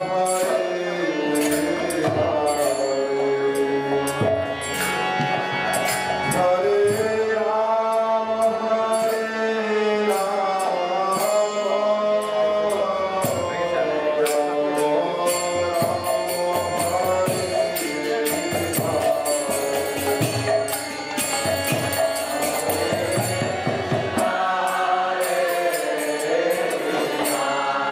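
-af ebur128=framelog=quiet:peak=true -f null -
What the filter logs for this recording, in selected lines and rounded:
Integrated loudness:
  I:         -21.8 LUFS
  Threshold: -31.8 LUFS
Loudness range:
  LRA:         1.6 LU
  Threshold: -41.8 LUFS
  LRA low:   -22.4 LUFS
  LRA high:  -20.8 LUFS
True peak:
  Peak:       -8.3 dBFS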